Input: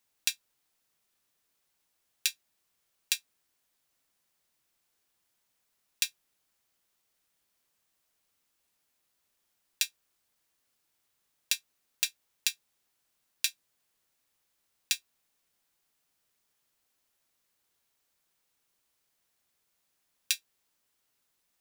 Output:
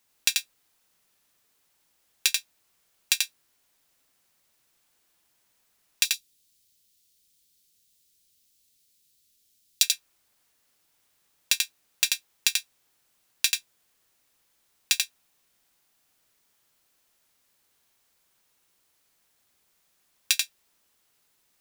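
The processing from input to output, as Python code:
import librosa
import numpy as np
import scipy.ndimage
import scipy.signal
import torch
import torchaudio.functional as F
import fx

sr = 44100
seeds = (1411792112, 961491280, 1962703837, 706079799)

y = fx.curve_eq(x, sr, hz=(110.0, 510.0, 870.0, 3900.0), db=(0, -8, -26, 3), at=(6.05, 9.83))
y = np.clip(y, -10.0 ** (-7.5 / 20.0), 10.0 ** (-7.5 / 20.0))
y = y + 10.0 ** (-3.5 / 20.0) * np.pad(y, (int(87 * sr / 1000.0), 0))[:len(y)]
y = y * 10.0 ** (6.0 / 20.0)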